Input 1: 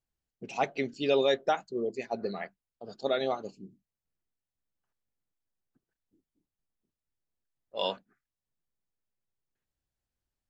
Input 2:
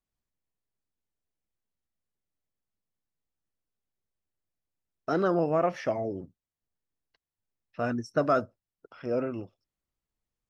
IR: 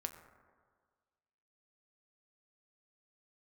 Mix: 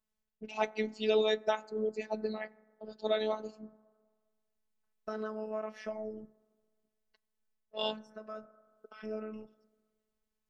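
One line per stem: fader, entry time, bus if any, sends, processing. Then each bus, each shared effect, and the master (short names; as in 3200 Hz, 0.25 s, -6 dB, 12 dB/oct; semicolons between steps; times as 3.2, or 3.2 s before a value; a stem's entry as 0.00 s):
-2.0 dB, 0.00 s, send -10.5 dB, low-pass opened by the level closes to 2800 Hz, open at -29 dBFS
0.0 dB, 0.00 s, send -11.5 dB, compressor 2:1, threshold -44 dBFS, peak gain reduction 13.5 dB; auto duck -19 dB, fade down 0.20 s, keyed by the first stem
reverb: on, RT60 1.7 s, pre-delay 6 ms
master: robotiser 216 Hz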